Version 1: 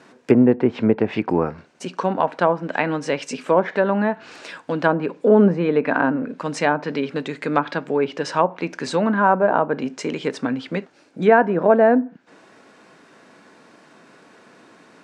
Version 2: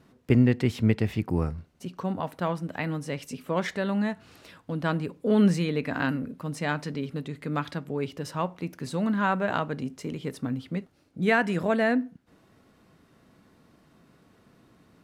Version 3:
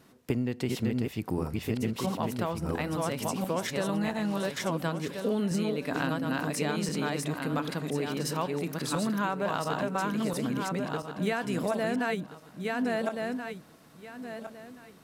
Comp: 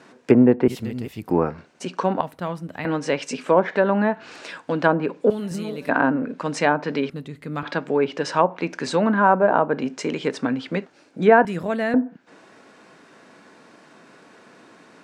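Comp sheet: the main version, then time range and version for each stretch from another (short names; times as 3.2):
1
0.68–1.3 from 3
2.21–2.85 from 2
5.3–5.89 from 3
7.1–7.63 from 2
11.45–11.94 from 2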